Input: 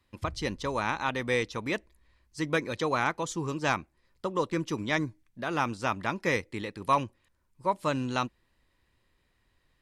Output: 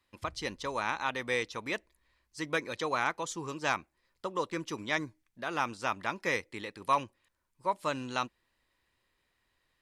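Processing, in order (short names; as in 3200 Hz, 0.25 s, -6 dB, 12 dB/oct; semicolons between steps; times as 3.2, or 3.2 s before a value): low shelf 320 Hz -10 dB; gain -1.5 dB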